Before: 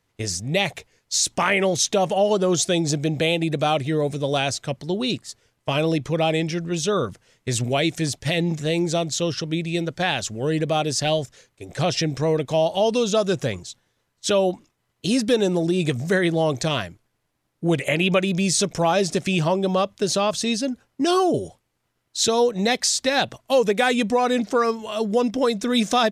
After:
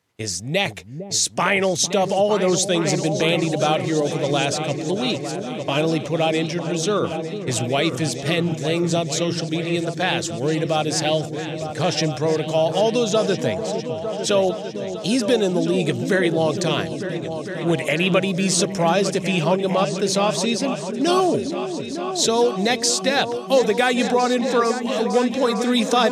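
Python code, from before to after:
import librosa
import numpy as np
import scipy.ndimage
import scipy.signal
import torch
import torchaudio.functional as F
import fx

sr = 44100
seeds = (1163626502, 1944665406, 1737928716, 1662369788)

y = scipy.signal.sosfilt(scipy.signal.butter(2, 71.0, 'highpass', fs=sr, output='sos'), x)
y = fx.low_shelf(y, sr, hz=92.0, db=-6.0)
y = fx.echo_opening(y, sr, ms=453, hz=400, octaves=2, feedback_pct=70, wet_db=-6)
y = y * 10.0 ** (1.0 / 20.0)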